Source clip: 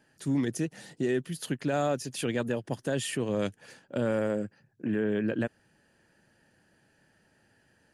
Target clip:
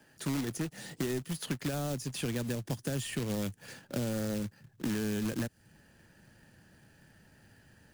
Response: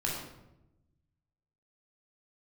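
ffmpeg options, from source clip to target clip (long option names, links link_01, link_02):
-filter_complex "[0:a]acrusher=bits=2:mode=log:mix=0:aa=0.000001,asubboost=boost=2:cutoff=240,acrossover=split=85|330|4300[link_01][link_02][link_03][link_04];[link_01]acompressor=threshold=-53dB:ratio=4[link_05];[link_02]acompressor=threshold=-39dB:ratio=4[link_06];[link_03]acompressor=threshold=-44dB:ratio=4[link_07];[link_04]acompressor=threshold=-46dB:ratio=4[link_08];[link_05][link_06][link_07][link_08]amix=inputs=4:normalize=0,volume=3.5dB"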